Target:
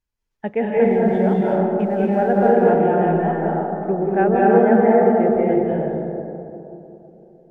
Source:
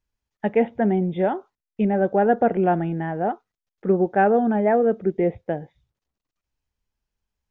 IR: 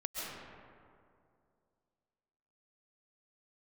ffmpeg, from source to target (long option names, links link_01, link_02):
-filter_complex "[0:a]asplit=3[link_01][link_02][link_03];[link_01]afade=type=out:start_time=0.83:duration=0.02[link_04];[link_02]aeval=exprs='sgn(val(0))*max(abs(val(0))-0.00299,0)':channel_layout=same,afade=type=in:start_time=0.83:duration=0.02,afade=type=out:start_time=2.5:duration=0.02[link_05];[link_03]afade=type=in:start_time=2.5:duration=0.02[link_06];[link_04][link_05][link_06]amix=inputs=3:normalize=0[link_07];[1:a]atrim=start_sample=2205,asetrate=31752,aresample=44100[link_08];[link_07][link_08]afir=irnorm=-1:irlink=0,volume=-1dB"